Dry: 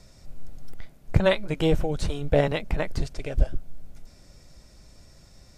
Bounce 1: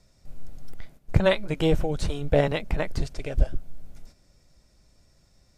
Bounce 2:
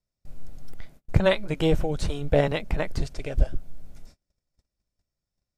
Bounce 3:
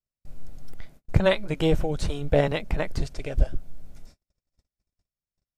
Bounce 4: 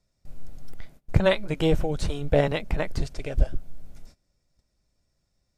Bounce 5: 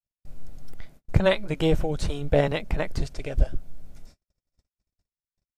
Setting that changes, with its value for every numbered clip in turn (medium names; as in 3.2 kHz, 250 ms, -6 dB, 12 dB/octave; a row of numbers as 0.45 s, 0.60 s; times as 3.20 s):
gate, range: -9 dB, -34 dB, -46 dB, -22 dB, -60 dB